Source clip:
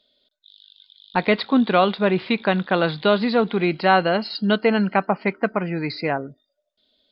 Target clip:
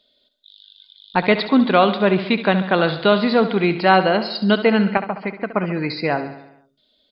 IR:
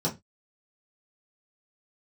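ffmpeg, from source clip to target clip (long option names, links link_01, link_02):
-filter_complex "[0:a]asettb=1/sr,asplit=3[link_01][link_02][link_03];[link_01]atrim=end=4.974[link_04];[link_02]atrim=start=4.97:end=5.51,asetpts=PTS-STARTPTS,afade=type=in:duration=0.004:curve=qsin,afade=type=out:start_time=0.536:duration=0.004:curve=qsin,acompressor=threshold=-29dB:ratio=2[link_05];[link_03]atrim=start=5.506[link_06];[link_04][link_05]acrossfade=duration=0.004:curve1=hsin:curve2=qsin[link_07];[link_07][link_06]acrossfade=duration=0.004:curve1=qsin:curve2=hsin,asplit=2[link_08][link_09];[link_09]aecho=0:1:69|138|207|276|345|414|483:0.251|0.148|0.0874|0.0516|0.0304|0.018|0.0106[link_10];[link_08][link_10]amix=inputs=2:normalize=0,volume=2.5dB"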